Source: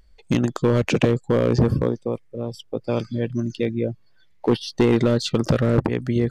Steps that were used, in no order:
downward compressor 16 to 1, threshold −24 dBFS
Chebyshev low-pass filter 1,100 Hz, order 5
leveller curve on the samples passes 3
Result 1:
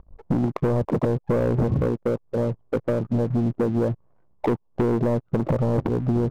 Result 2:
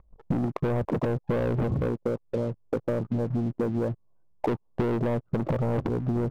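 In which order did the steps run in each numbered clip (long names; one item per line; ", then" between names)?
downward compressor, then Chebyshev low-pass filter, then leveller curve on the samples
Chebyshev low-pass filter, then leveller curve on the samples, then downward compressor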